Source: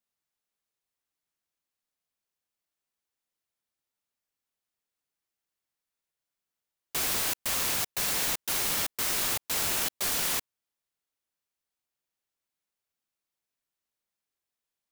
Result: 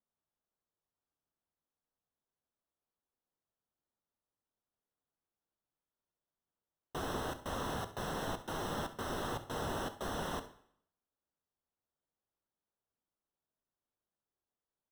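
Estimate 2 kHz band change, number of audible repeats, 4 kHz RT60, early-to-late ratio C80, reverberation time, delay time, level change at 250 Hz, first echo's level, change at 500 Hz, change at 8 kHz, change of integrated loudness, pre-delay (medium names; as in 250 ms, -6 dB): -10.0 dB, 1, 0.60 s, 17.0 dB, 0.65 s, 67 ms, +2.0 dB, -15.5 dB, +1.0 dB, -20.5 dB, -12.5 dB, 6 ms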